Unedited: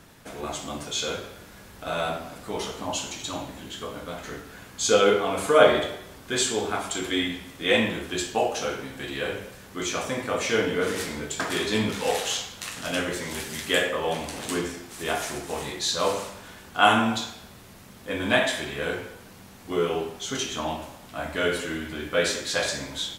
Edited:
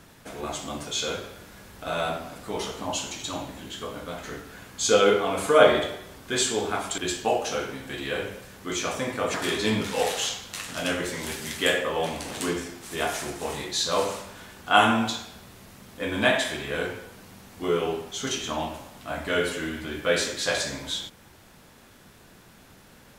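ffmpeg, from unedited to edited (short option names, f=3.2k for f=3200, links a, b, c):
-filter_complex "[0:a]asplit=3[a][b][c];[a]atrim=end=6.982[d];[b]atrim=start=8.078:end=10.442[e];[c]atrim=start=11.418[f];[d][e]acrossfade=d=0.004:c1=hsin:c2=hsin[g];[g][f]acrossfade=d=0.004:c1=hsin:c2=hsin"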